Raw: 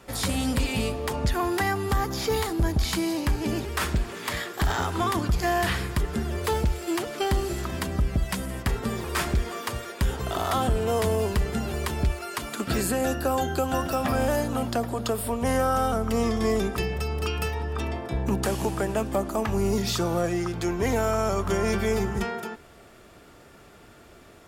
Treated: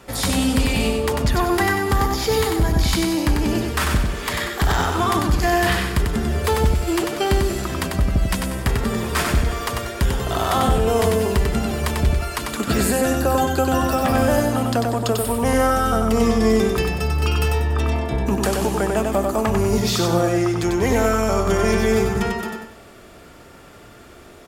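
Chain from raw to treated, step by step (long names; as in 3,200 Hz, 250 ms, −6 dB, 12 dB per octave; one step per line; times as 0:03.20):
on a send: repeating echo 95 ms, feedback 35%, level −4 dB
on the sum: level +5 dB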